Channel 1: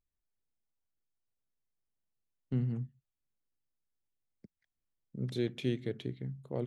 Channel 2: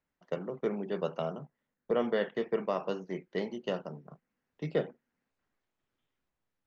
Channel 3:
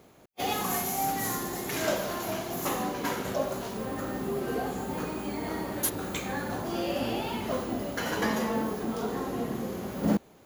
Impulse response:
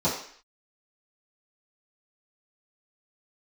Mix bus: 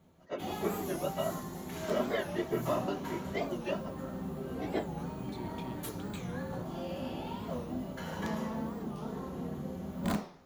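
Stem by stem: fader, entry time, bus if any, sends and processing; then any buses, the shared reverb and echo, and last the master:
-15.0 dB, 0.00 s, no send, sample leveller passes 2
-2.5 dB, 0.00 s, no send, phase scrambler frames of 50 ms; comb 3.1 ms, depth 88%
-13.5 dB, 0.00 s, send -12 dB, low shelf 130 Hz +8 dB; wrapped overs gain 15 dB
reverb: on, RT60 0.55 s, pre-delay 3 ms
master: bell 340 Hz -2 dB 1.7 oct; record warp 45 rpm, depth 160 cents

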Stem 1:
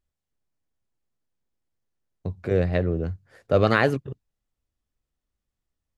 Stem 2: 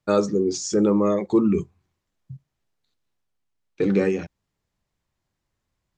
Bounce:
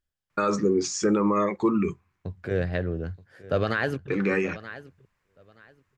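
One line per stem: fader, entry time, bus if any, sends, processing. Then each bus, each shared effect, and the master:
-4.5 dB, 0.00 s, no send, echo send -18.5 dB, thirty-one-band EQ 1600 Hz +9 dB, 3150 Hz +5 dB, 5000 Hz +4 dB
0.0 dB, 0.30 s, no send, no echo send, band shelf 1600 Hz +10 dB; auto duck -6 dB, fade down 1.60 s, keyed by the first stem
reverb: off
echo: feedback echo 0.926 s, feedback 20%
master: limiter -13.5 dBFS, peak gain reduction 9 dB

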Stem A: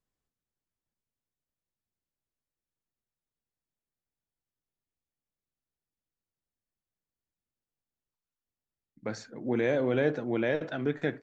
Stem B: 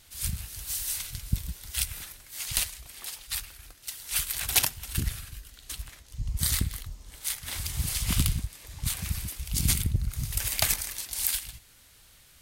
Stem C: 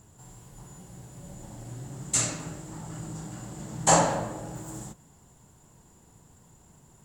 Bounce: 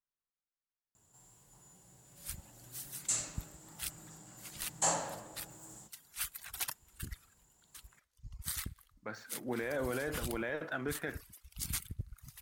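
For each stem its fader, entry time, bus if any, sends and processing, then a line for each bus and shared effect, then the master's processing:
8.63 s -18 dB -> 9.35 s -8.5 dB, 0.00 s, bus A, no send, median filter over 5 samples
-11.0 dB, 2.05 s, bus A, no send, reverb removal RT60 1.7 s; upward expander 1.5:1, over -40 dBFS
-12.5 dB, 0.95 s, no bus, no send, low shelf 360 Hz -7 dB
bus A: 0.0 dB, bell 1300 Hz +11 dB 1.5 oct; limiter -27 dBFS, peak gain reduction 11 dB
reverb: off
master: high shelf 4700 Hz +6.5 dB

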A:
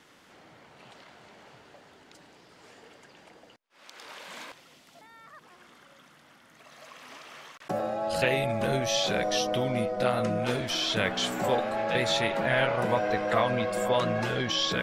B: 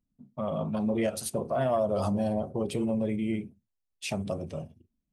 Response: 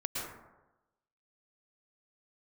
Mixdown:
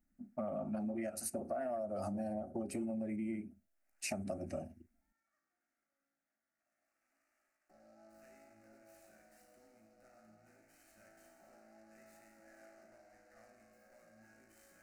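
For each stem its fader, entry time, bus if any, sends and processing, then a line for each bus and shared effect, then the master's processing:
-17.5 dB, 0.00 s, no send, tube stage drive 25 dB, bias 0.55; resonator 55 Hz, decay 1.4 s, harmonics all, mix 90%; noise-modulated delay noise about 3900 Hz, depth 0.04 ms
+3.0 dB, 0.00 s, no send, dry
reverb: off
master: fixed phaser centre 680 Hz, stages 8; compressor 12:1, threshold -36 dBFS, peak gain reduction 15.5 dB

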